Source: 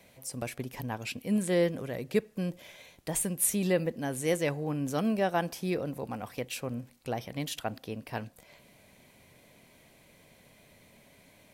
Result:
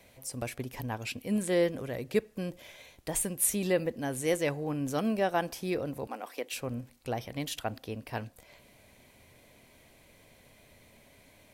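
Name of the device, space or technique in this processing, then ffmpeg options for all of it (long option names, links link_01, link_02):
low shelf boost with a cut just above: -filter_complex "[0:a]asettb=1/sr,asplit=3[link_01][link_02][link_03];[link_01]atrim=end=6.074[link_04];[link_02]atrim=start=6.07:end=6.52,asetpts=PTS-STARTPTS,afade=type=in:duration=0.004:curve=qsin,afade=type=out:start_time=0.446:duration=0.004:curve=qsin,highpass=frequency=280:width=0.5412,highpass=frequency=280:width=1.3066[link_05];[link_03]atrim=start=6.516[link_06];[link_04][link_05]acrossfade=duration=0.004:curve1=hsin:curve2=qsin[link_07];[link_07][link_06]acrossfade=duration=0.004:curve1=qsin:curve2=hsin,lowshelf=frequency=89:gain=6.5,equalizer=frequency=170:width_type=o:width=0.58:gain=-6"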